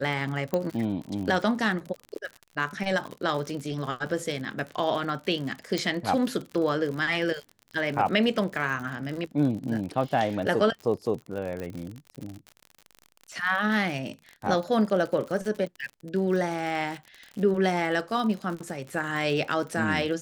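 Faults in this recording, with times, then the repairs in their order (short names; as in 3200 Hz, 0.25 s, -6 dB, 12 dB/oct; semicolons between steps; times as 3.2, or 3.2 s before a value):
crackle 59/s -33 dBFS
0.54 pop -14 dBFS
5.78 pop
11.6 pop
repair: de-click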